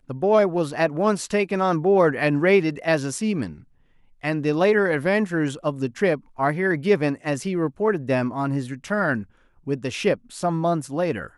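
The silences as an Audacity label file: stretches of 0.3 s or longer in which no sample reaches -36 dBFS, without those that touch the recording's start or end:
3.580000	4.230000	silence
9.230000	9.670000	silence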